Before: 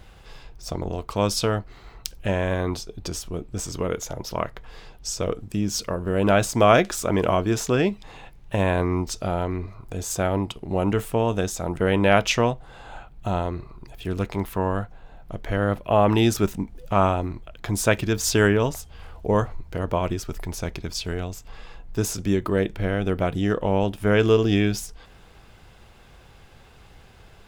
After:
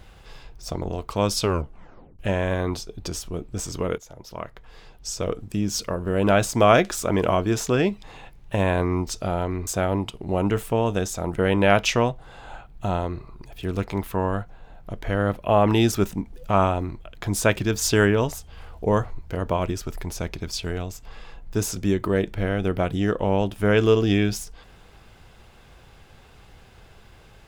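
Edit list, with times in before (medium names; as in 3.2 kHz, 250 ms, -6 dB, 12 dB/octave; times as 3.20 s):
1.41 s: tape stop 0.78 s
3.98–5.40 s: fade in, from -14.5 dB
9.67–10.09 s: delete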